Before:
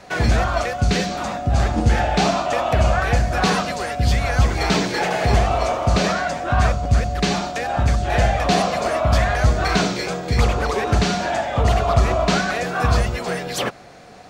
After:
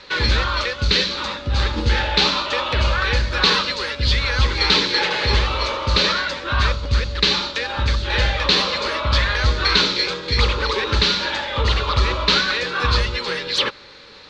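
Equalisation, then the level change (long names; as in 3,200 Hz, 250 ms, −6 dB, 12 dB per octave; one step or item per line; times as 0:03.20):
Butterworth band-reject 700 Hz, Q 2.8
low-pass with resonance 4,000 Hz, resonance Q 3.8
parametric band 160 Hz −10 dB 1.8 octaves
+1.5 dB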